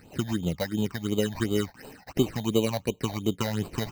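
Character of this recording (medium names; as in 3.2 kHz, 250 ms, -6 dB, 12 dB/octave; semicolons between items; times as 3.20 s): aliases and images of a low sample rate 3.4 kHz, jitter 0%; phasing stages 8, 2.8 Hz, lowest notch 350–1800 Hz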